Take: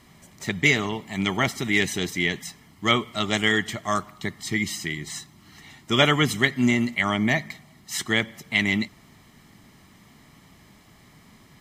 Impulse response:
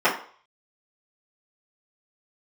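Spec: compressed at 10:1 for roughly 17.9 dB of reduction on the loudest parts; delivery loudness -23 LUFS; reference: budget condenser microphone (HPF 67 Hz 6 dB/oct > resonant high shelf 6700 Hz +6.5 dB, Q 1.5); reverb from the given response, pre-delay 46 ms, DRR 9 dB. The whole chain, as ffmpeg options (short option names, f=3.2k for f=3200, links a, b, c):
-filter_complex "[0:a]acompressor=threshold=-32dB:ratio=10,asplit=2[a][b];[1:a]atrim=start_sample=2205,adelay=46[c];[b][c]afir=irnorm=-1:irlink=0,volume=-28.5dB[d];[a][d]amix=inputs=2:normalize=0,highpass=f=67:p=1,highshelf=f=6.7k:t=q:w=1.5:g=6.5,volume=13dB"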